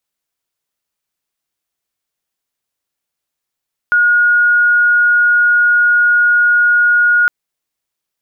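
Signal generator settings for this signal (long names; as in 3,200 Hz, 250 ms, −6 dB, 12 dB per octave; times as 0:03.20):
tone sine 1,440 Hz −7.5 dBFS 3.36 s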